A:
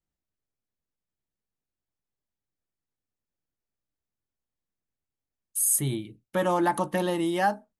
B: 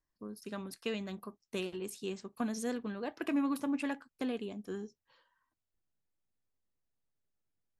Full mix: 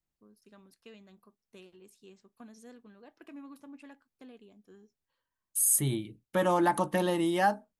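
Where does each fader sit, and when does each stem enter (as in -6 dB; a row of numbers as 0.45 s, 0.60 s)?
-1.5 dB, -15.5 dB; 0.00 s, 0.00 s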